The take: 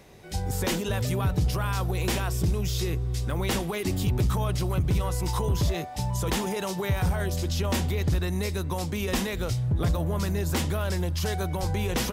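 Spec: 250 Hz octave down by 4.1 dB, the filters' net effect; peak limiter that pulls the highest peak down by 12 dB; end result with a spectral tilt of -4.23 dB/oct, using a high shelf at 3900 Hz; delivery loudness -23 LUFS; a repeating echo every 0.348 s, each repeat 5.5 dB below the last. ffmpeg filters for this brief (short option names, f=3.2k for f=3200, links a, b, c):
-af "equalizer=f=250:t=o:g=-7,highshelf=f=3.9k:g=6.5,alimiter=level_in=1.5dB:limit=-24dB:level=0:latency=1,volume=-1.5dB,aecho=1:1:348|696|1044|1392|1740|2088|2436:0.531|0.281|0.149|0.079|0.0419|0.0222|0.0118,volume=10dB"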